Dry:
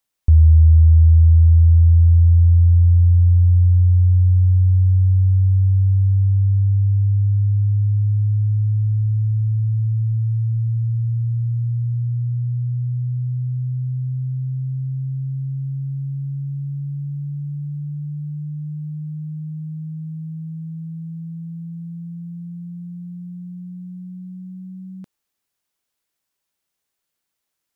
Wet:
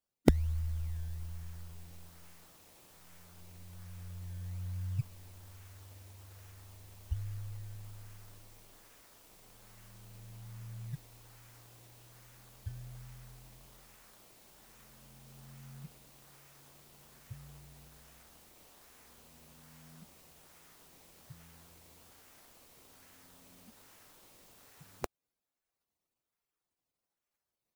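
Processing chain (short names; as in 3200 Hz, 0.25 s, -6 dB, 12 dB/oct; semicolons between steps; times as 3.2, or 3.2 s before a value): spectral gate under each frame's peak -20 dB weak; bell 190 Hz -12.5 dB 0.43 oct; in parallel at -4 dB: decimation with a swept rate 18×, swing 100% 1.2 Hz; on the sum: gain +18 dB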